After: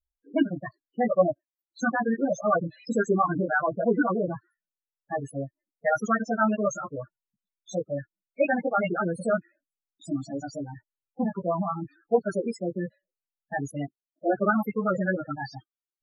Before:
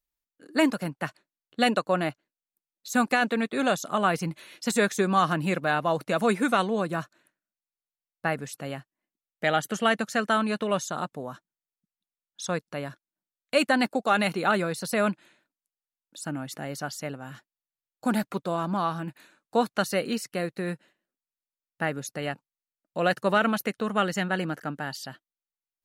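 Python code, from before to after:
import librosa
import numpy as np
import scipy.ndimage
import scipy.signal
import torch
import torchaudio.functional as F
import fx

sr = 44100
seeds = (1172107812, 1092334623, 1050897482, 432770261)

y = fx.stretch_vocoder(x, sr, factor=0.62)
y = fx.chorus_voices(y, sr, voices=6, hz=0.13, base_ms=16, depth_ms=1.9, mix_pct=50)
y = fx.spec_topn(y, sr, count=8)
y = y * librosa.db_to_amplitude(6.0)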